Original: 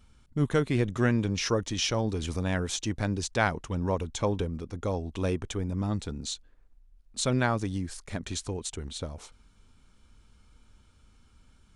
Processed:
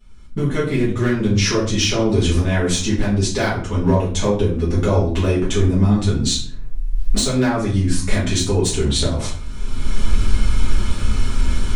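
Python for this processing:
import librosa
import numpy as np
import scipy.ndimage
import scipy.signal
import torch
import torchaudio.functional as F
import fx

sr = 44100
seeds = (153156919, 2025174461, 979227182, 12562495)

y = fx.recorder_agc(x, sr, target_db=-14.5, rise_db_per_s=23.0, max_gain_db=30)
y = 10.0 ** (-14.5 / 20.0) * (np.abs((y / 10.0 ** (-14.5 / 20.0) + 3.0) % 4.0 - 2.0) - 1.0)
y = fx.room_shoebox(y, sr, seeds[0], volume_m3=48.0, walls='mixed', distance_m=1.8)
y = F.gain(torch.from_numpy(y), -3.5).numpy()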